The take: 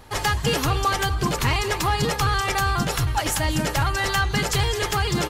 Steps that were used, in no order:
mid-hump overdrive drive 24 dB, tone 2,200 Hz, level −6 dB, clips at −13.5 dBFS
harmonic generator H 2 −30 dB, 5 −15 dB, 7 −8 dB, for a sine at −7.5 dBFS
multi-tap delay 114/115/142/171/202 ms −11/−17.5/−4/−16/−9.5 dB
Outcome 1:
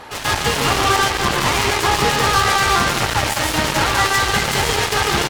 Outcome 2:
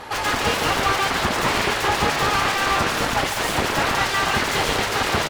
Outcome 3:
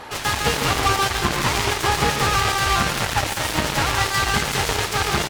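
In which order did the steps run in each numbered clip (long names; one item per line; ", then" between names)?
mid-hump overdrive, then multi-tap delay, then harmonic generator
multi-tap delay, then harmonic generator, then mid-hump overdrive
multi-tap delay, then mid-hump overdrive, then harmonic generator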